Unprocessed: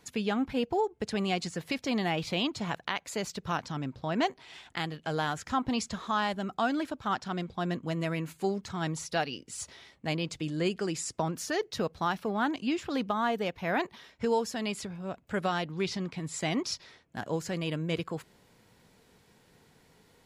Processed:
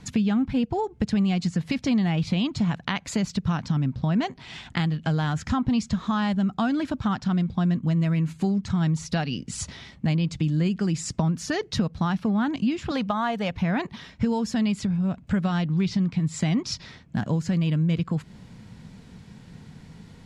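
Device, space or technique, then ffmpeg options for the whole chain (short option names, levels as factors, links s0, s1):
jukebox: -filter_complex "[0:a]asettb=1/sr,asplit=3[s0][s1][s2];[s0]atrim=end=12.914[s3];[s1]atrim=start=12.91:end=13.51,asetpts=PTS-STARTPTS,afade=t=in:d=0.004:c=qsin,afade=t=out:st=0.596:d=0.004:c=qsin,lowshelf=f=440:t=q:w=1.5:g=-7.5[s4];[s2]atrim=start=13.506[s5];[s3][s4]acrossfade=d=0.004:c1=hsin:c2=qsin[s6];[s6][s5]acrossfade=d=0.004:c1=qsin:c2=hsin,lowpass=7600,lowshelf=f=280:t=q:w=1.5:g=10.5,acompressor=threshold=0.0251:ratio=3,volume=2.66"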